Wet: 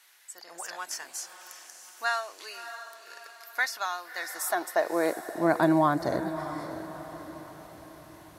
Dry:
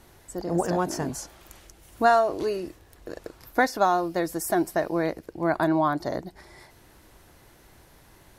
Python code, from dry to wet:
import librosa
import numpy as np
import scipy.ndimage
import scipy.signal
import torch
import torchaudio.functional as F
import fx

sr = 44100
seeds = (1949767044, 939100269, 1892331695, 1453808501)

y = fx.filter_sweep_highpass(x, sr, from_hz=1800.0, to_hz=83.0, start_s=4.1, end_s=6.0, q=0.98)
y = fx.echo_diffused(y, sr, ms=629, feedback_pct=48, wet_db=-11.0)